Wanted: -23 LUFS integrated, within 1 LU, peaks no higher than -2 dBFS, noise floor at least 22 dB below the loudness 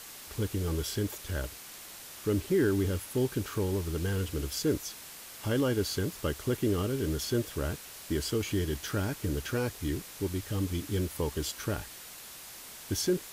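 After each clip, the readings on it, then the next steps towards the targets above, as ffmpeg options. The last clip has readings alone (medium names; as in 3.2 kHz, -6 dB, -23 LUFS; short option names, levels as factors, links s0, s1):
noise floor -47 dBFS; noise floor target -54 dBFS; loudness -32.0 LUFS; peak level -17.5 dBFS; loudness target -23.0 LUFS
-> -af "afftdn=nr=7:nf=-47"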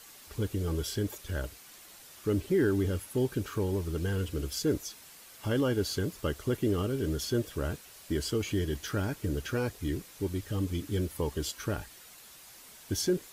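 noise floor -52 dBFS; noise floor target -55 dBFS
-> -af "afftdn=nr=6:nf=-52"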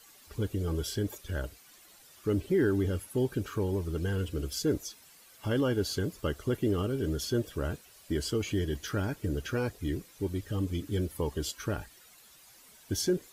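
noise floor -57 dBFS; loudness -32.5 LUFS; peak level -18.0 dBFS; loudness target -23.0 LUFS
-> -af "volume=2.99"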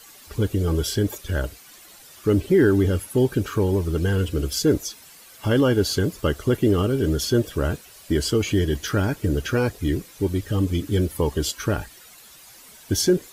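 loudness -23.0 LUFS; peak level -8.5 dBFS; noise floor -47 dBFS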